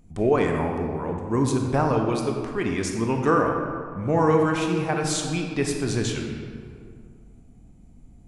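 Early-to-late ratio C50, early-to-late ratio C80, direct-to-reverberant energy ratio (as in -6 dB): 3.5 dB, 5.0 dB, 2.0 dB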